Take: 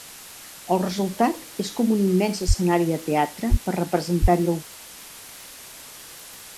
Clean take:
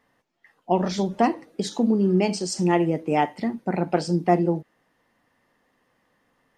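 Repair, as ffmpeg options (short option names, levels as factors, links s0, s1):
-filter_complex "[0:a]adeclick=t=4,asplit=3[s0][s1][s2];[s0]afade=t=out:st=2.47:d=0.02[s3];[s1]highpass=f=140:w=0.5412,highpass=f=140:w=1.3066,afade=t=in:st=2.47:d=0.02,afade=t=out:st=2.59:d=0.02[s4];[s2]afade=t=in:st=2.59:d=0.02[s5];[s3][s4][s5]amix=inputs=3:normalize=0,asplit=3[s6][s7][s8];[s6]afade=t=out:st=3.5:d=0.02[s9];[s7]highpass=f=140:w=0.5412,highpass=f=140:w=1.3066,afade=t=in:st=3.5:d=0.02,afade=t=out:st=3.62:d=0.02[s10];[s8]afade=t=in:st=3.62:d=0.02[s11];[s9][s10][s11]amix=inputs=3:normalize=0,asplit=3[s12][s13][s14];[s12]afade=t=out:st=4.21:d=0.02[s15];[s13]highpass=f=140:w=0.5412,highpass=f=140:w=1.3066,afade=t=in:st=4.21:d=0.02,afade=t=out:st=4.33:d=0.02[s16];[s14]afade=t=in:st=4.33:d=0.02[s17];[s15][s16][s17]amix=inputs=3:normalize=0,afwtdn=0.01"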